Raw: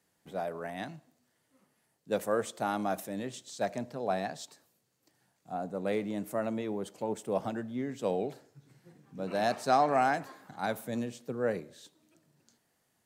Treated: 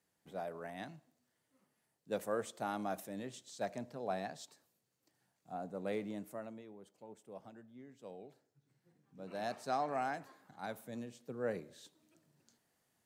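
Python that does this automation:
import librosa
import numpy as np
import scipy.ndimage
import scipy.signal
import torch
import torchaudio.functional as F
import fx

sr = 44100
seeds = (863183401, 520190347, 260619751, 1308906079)

y = fx.gain(x, sr, db=fx.line((6.1, -7.0), (6.73, -19.5), (8.2, -19.5), (9.47, -10.5), (11.09, -10.5), (11.76, -4.0)))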